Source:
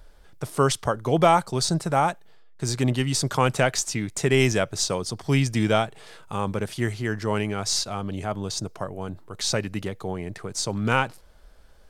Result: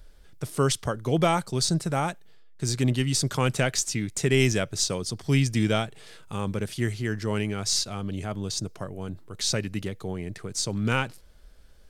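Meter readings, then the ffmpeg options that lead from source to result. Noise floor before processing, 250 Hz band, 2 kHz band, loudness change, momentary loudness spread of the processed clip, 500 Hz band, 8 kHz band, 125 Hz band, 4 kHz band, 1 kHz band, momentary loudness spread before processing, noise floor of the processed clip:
-50 dBFS, -1.0 dB, -3.0 dB, -2.0 dB, 11 LU, -4.0 dB, 0.0 dB, -0.5 dB, -0.5 dB, -7.0 dB, 12 LU, -50 dBFS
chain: -af "equalizer=f=870:t=o:w=1.6:g=-8"

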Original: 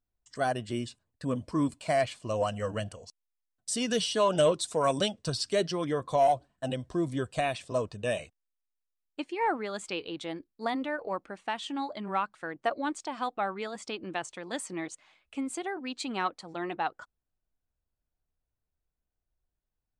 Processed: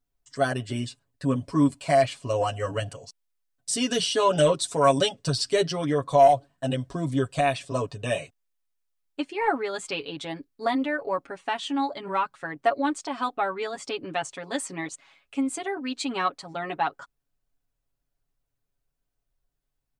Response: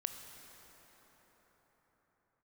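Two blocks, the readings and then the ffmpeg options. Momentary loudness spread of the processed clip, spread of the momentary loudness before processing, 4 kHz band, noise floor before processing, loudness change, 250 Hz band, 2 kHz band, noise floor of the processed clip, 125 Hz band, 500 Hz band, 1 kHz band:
12 LU, 12 LU, +5.0 dB, under -85 dBFS, +5.5 dB, +5.5 dB, +4.5 dB, -81 dBFS, +7.0 dB, +5.0 dB, +5.5 dB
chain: -af "aecho=1:1:7.2:0.86,volume=2.5dB"

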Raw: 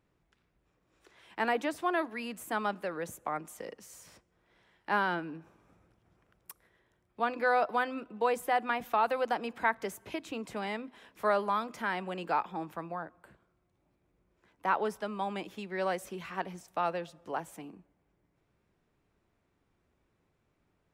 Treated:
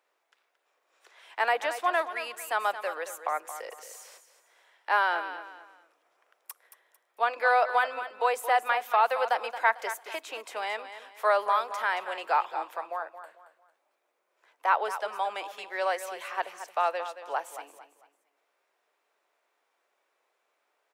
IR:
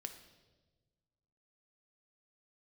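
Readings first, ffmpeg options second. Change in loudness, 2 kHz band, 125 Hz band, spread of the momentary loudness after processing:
+4.5 dB, +5.5 dB, under -30 dB, 17 LU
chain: -filter_complex "[0:a]highpass=f=530:w=0.5412,highpass=f=530:w=1.3066,acontrast=29,asplit=2[a][b];[b]aecho=0:1:224|448|672:0.266|0.0851|0.0272[c];[a][c]amix=inputs=2:normalize=0"

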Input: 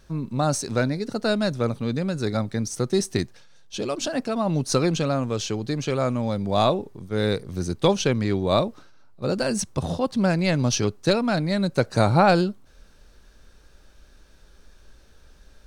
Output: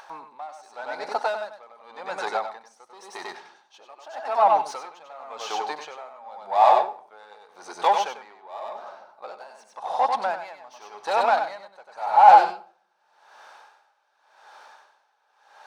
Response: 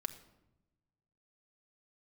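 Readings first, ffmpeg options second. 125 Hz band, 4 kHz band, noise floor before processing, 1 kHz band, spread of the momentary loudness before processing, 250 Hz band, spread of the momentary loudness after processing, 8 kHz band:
under -35 dB, -8.0 dB, -53 dBFS, +9.0 dB, 7 LU, -25.0 dB, 23 LU, under -10 dB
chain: -filter_complex "[0:a]asplit=2[a][b];[b]highpass=f=720:p=1,volume=23dB,asoftclip=type=tanh:threshold=-5.5dB[c];[a][c]amix=inputs=2:normalize=0,lowpass=f=1.6k:p=1,volume=-6dB,highpass=f=830:t=q:w=5.8,acompressor=mode=upward:threshold=-34dB:ratio=2.5,asplit=2[d][e];[1:a]atrim=start_sample=2205,lowshelf=f=62:g=12,adelay=95[f];[e][f]afir=irnorm=-1:irlink=0,volume=-2.5dB[g];[d][g]amix=inputs=2:normalize=0,aeval=exprs='val(0)*pow(10,-23*(0.5-0.5*cos(2*PI*0.89*n/s))/20)':c=same,volume=-8dB"

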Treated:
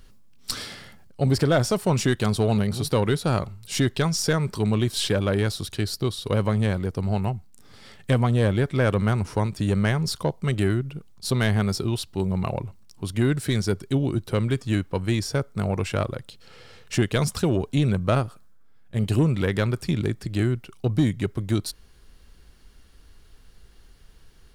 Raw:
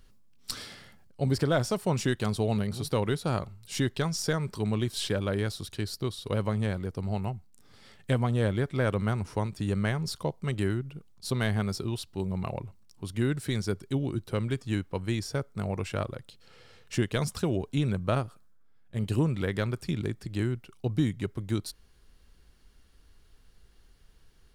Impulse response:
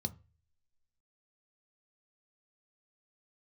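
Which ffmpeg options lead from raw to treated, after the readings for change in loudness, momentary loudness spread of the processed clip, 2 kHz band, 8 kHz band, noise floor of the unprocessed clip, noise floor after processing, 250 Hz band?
+6.0 dB, 8 LU, +5.5 dB, +7.0 dB, -58 dBFS, -51 dBFS, +6.0 dB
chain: -af "aeval=exprs='0.188*(cos(1*acos(clip(val(0)/0.188,-1,1)))-cos(1*PI/2))+0.0106*(cos(5*acos(clip(val(0)/0.188,-1,1)))-cos(5*PI/2))':c=same,volume=5dB"

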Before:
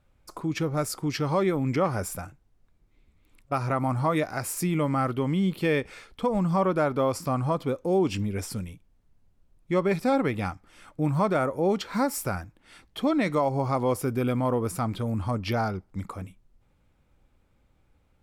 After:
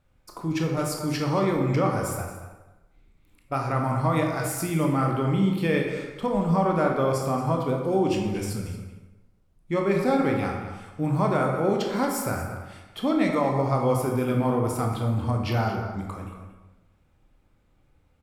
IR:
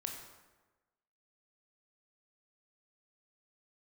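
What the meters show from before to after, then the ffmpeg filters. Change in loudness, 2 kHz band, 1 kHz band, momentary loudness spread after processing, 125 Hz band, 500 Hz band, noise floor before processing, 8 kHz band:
+1.5 dB, +1.5 dB, +1.5 dB, 12 LU, +3.0 dB, +1.5 dB, -66 dBFS, +0.5 dB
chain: -filter_complex "[0:a]asplit=2[a][b];[b]adelay=227.4,volume=-11dB,highshelf=f=4k:g=-5.12[c];[a][c]amix=inputs=2:normalize=0[d];[1:a]atrim=start_sample=2205,asetrate=48510,aresample=44100[e];[d][e]afir=irnorm=-1:irlink=0,volume=3dB"

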